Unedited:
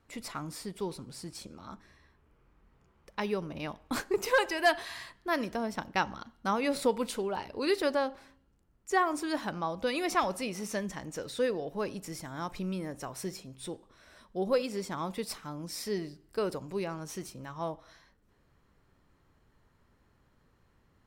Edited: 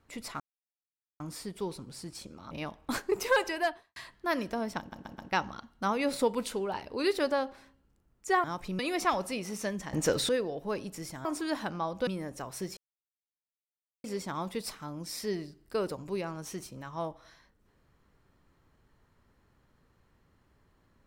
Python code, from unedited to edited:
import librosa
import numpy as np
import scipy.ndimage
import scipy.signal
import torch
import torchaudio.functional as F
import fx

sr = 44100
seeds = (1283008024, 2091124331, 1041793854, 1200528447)

y = fx.studio_fade_out(x, sr, start_s=4.47, length_s=0.51)
y = fx.edit(y, sr, fx.insert_silence(at_s=0.4, length_s=0.8),
    fx.cut(start_s=1.71, length_s=1.82),
    fx.stutter(start_s=5.81, slice_s=0.13, count=4),
    fx.swap(start_s=9.07, length_s=0.82, other_s=12.35, other_length_s=0.35),
    fx.clip_gain(start_s=11.03, length_s=0.36, db=11.5),
    fx.silence(start_s=13.4, length_s=1.27), tone=tone)